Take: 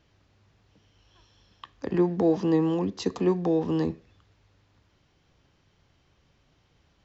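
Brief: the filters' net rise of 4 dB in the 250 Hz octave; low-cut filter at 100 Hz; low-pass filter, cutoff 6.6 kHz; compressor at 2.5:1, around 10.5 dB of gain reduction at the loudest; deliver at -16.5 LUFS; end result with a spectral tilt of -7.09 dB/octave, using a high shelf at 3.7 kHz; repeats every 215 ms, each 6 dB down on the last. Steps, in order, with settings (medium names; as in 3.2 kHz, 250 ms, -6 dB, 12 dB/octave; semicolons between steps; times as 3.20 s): high-pass 100 Hz; low-pass 6.6 kHz; peaking EQ 250 Hz +6.5 dB; treble shelf 3.7 kHz +5 dB; compression 2.5:1, threshold -31 dBFS; feedback delay 215 ms, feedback 50%, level -6 dB; trim +14 dB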